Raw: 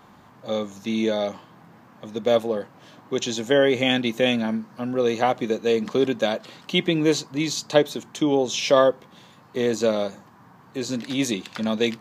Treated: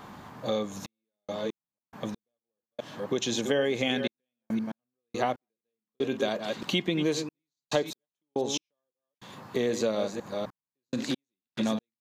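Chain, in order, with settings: chunks repeated in reverse 255 ms, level -10.5 dB; compression 3:1, threshold -33 dBFS, peak gain reduction 16 dB; trance gate "xxxx..x..x...xx" 70 bpm -60 dB; trim +5 dB

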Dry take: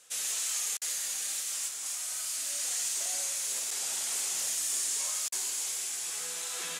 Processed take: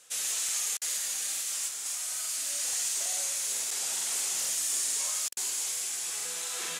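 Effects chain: crackling interface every 0.44 s, samples 2048, repeat, from 0.44 s; trim +1.5 dB

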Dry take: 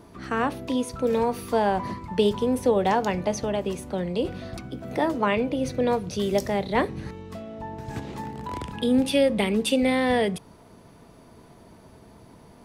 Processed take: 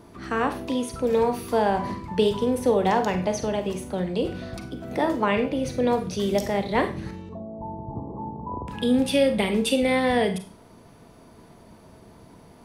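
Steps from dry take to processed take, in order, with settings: 7.29–8.68 s: steep low-pass 1.1 kHz 96 dB/octave; Schroeder reverb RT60 0.36 s, combs from 33 ms, DRR 7.5 dB

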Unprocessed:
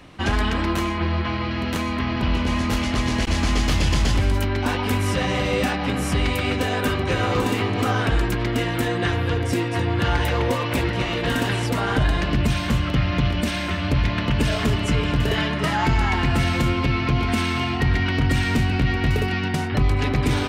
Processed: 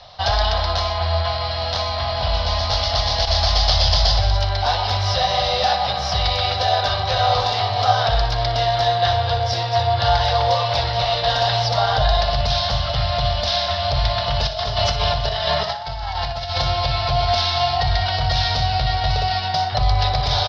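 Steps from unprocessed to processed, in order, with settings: FFT filter 110 Hz 0 dB, 300 Hz -26 dB, 690 Hz +14 dB, 980 Hz +3 dB, 2.5 kHz -5 dB, 3.7 kHz +13 dB, 5.2 kHz +15 dB, 8 kHz -25 dB, 13 kHz -27 dB; 14.47–16.58 s: compressor with a negative ratio -22 dBFS, ratio -0.5; feedback delay 60 ms, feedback 45%, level -12 dB

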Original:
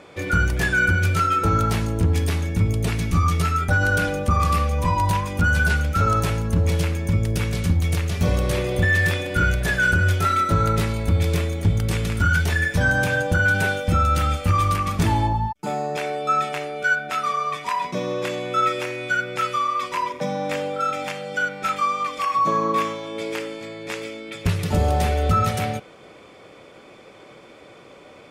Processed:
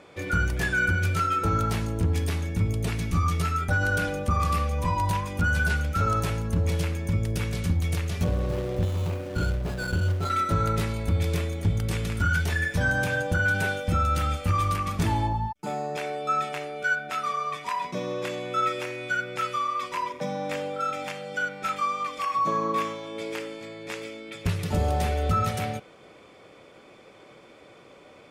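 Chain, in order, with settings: 8.24–10.30 s: median filter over 25 samples; trim -5 dB

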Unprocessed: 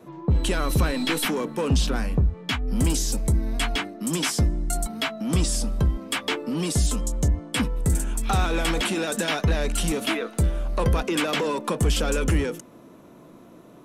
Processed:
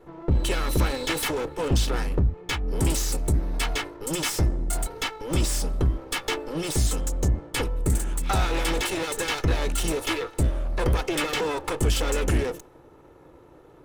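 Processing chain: comb filter that takes the minimum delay 2.3 ms; tape noise reduction on one side only decoder only

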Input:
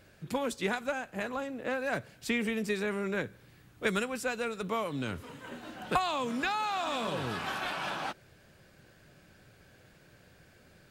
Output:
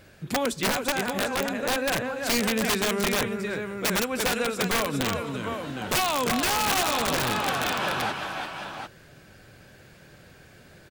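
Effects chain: multi-tap echo 343/515/746 ms -6.5/-19/-7.5 dB; integer overflow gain 24 dB; trim +6.5 dB

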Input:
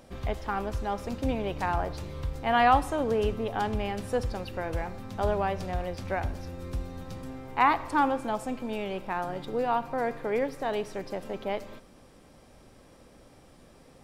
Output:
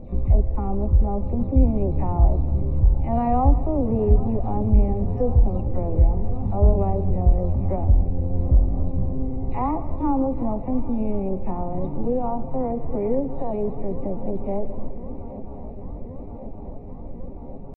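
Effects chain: delay that grows with frequency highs early, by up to 161 ms; in parallel at +2.5 dB: compression 5:1, threshold -43 dBFS, peak gain reduction 22.5 dB; on the sum: tilt EQ -3.5 dB/octave; on a send: shuffle delay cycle 856 ms, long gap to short 3:1, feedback 78%, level -18 dB; on the sum: tempo 0.79×; boxcar filter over 28 samples; modulated delay 159 ms, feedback 60%, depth 76 cents, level -18 dB

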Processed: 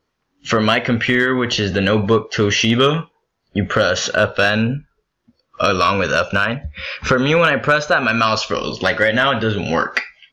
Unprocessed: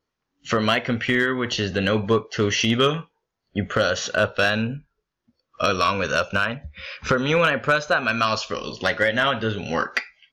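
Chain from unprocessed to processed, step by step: treble shelf 7.3 kHz -6 dB; in parallel at +2.5 dB: peak limiter -19 dBFS, peak gain reduction 9.5 dB; on the sum: trim +1.5 dB

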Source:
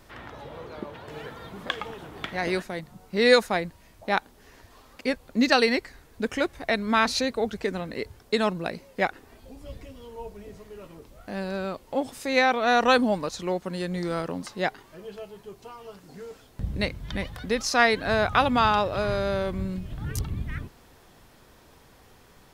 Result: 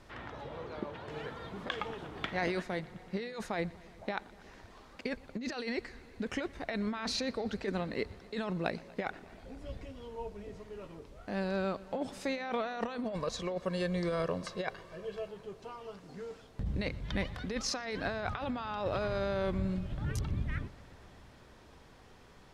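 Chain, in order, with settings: 13.04–15.28 s: comb 1.8 ms, depth 63%; compressor with a negative ratio -28 dBFS, ratio -1; distance through air 58 m; bucket-brigade echo 120 ms, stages 4096, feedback 84%, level -23 dB; trim -6 dB

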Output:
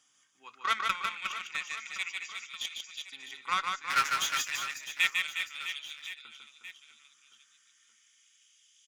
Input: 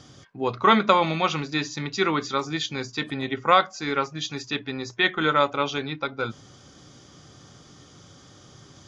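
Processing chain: FFT filter 220 Hz 0 dB, 690 Hz -22 dB, 2.8 kHz -1 dB, 4.3 kHz -14 dB, 8 kHz +7 dB; 3.90–4.48 s: waveshaping leveller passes 5; LFO high-pass saw up 0.32 Hz 850–4100 Hz; Chebyshev shaper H 7 -22 dB, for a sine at -9.5 dBFS; on a send: reverse bouncing-ball echo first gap 150 ms, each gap 1.4×, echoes 5; on the sum: trim -3.5 dB

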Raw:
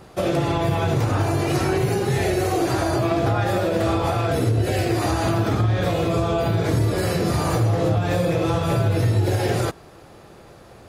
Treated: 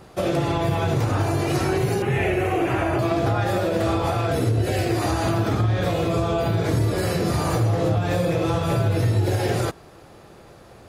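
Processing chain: 2.02–2.99 s: resonant high shelf 3.4 kHz -8.5 dB, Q 3; trim -1 dB

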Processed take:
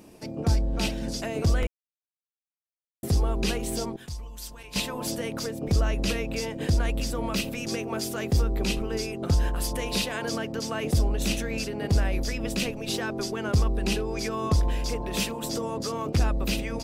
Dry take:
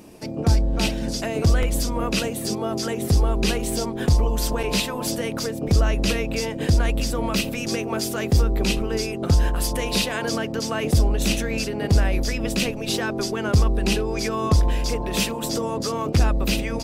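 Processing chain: 1.67–3.03 s: mute; 3.96–4.76 s: amplifier tone stack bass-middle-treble 5-5-5; trim -5 dB

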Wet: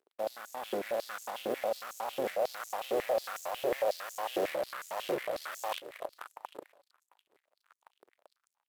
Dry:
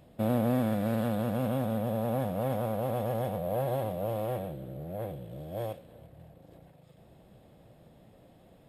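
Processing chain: harmony voices -7 st -10 dB; in parallel at -4 dB: fuzz box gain 43 dB, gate -52 dBFS; on the sum: power-law waveshaper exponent 3; reverse; compression 16:1, threshold -38 dBFS, peak gain reduction 20.5 dB; reverse; feedback delay 248 ms, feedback 56%, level -20 dB; step-sequenced high-pass 11 Hz 400–6700 Hz; trim +8.5 dB

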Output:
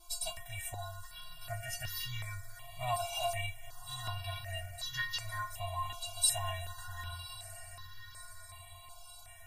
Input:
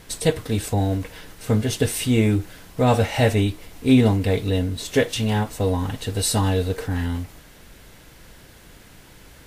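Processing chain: echo that smears into a reverb 1128 ms, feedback 54%, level -13 dB; FFT band-reject 160–600 Hz; inharmonic resonator 340 Hz, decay 0.3 s, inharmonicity 0.008; stepped phaser 2.7 Hz 500–2500 Hz; trim +8.5 dB

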